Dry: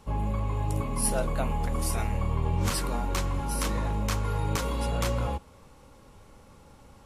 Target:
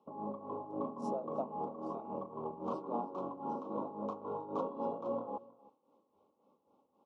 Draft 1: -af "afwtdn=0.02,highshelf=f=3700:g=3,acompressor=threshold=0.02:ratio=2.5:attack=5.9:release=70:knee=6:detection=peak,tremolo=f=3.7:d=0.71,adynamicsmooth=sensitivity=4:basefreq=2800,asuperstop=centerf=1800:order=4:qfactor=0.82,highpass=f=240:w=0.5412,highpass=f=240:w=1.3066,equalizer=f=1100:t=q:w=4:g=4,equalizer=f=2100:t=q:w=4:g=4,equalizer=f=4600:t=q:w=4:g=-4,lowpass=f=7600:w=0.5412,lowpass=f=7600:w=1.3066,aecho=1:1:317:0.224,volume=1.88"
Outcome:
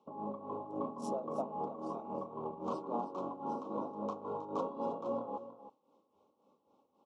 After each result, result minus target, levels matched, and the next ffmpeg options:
echo-to-direct +8 dB; 4 kHz band +5.0 dB
-af "afwtdn=0.02,highshelf=f=3700:g=3,acompressor=threshold=0.02:ratio=2.5:attack=5.9:release=70:knee=6:detection=peak,tremolo=f=3.7:d=0.71,adynamicsmooth=sensitivity=4:basefreq=2800,asuperstop=centerf=1800:order=4:qfactor=0.82,highpass=f=240:w=0.5412,highpass=f=240:w=1.3066,equalizer=f=1100:t=q:w=4:g=4,equalizer=f=2100:t=q:w=4:g=4,equalizer=f=4600:t=q:w=4:g=-4,lowpass=f=7600:w=0.5412,lowpass=f=7600:w=1.3066,aecho=1:1:317:0.0891,volume=1.88"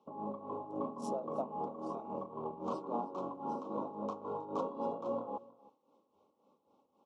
4 kHz band +5.0 dB
-af "afwtdn=0.02,highshelf=f=3700:g=-7.5,acompressor=threshold=0.02:ratio=2.5:attack=5.9:release=70:knee=6:detection=peak,tremolo=f=3.7:d=0.71,adynamicsmooth=sensitivity=4:basefreq=2800,asuperstop=centerf=1800:order=4:qfactor=0.82,highpass=f=240:w=0.5412,highpass=f=240:w=1.3066,equalizer=f=1100:t=q:w=4:g=4,equalizer=f=2100:t=q:w=4:g=4,equalizer=f=4600:t=q:w=4:g=-4,lowpass=f=7600:w=0.5412,lowpass=f=7600:w=1.3066,aecho=1:1:317:0.0891,volume=1.88"

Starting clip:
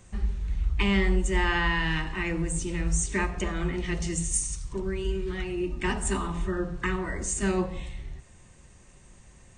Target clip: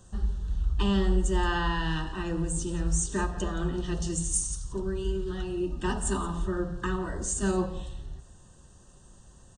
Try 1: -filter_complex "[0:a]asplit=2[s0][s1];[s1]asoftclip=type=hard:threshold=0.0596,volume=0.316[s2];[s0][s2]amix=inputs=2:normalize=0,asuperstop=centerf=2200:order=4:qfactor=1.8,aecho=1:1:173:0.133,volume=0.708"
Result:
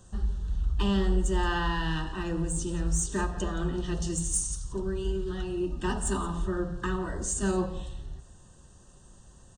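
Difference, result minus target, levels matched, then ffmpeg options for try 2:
hard clipper: distortion +17 dB
-filter_complex "[0:a]asplit=2[s0][s1];[s1]asoftclip=type=hard:threshold=0.141,volume=0.316[s2];[s0][s2]amix=inputs=2:normalize=0,asuperstop=centerf=2200:order=4:qfactor=1.8,aecho=1:1:173:0.133,volume=0.708"

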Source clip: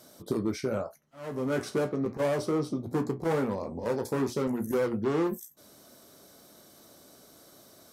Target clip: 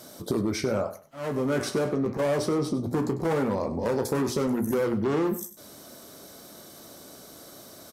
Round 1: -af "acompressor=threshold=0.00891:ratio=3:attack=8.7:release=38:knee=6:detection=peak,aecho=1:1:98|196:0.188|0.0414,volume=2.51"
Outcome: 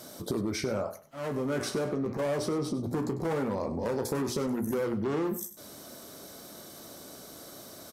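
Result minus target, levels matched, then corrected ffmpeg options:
compression: peak gain reduction +4.5 dB
-af "acompressor=threshold=0.02:ratio=3:attack=8.7:release=38:knee=6:detection=peak,aecho=1:1:98|196:0.188|0.0414,volume=2.51"

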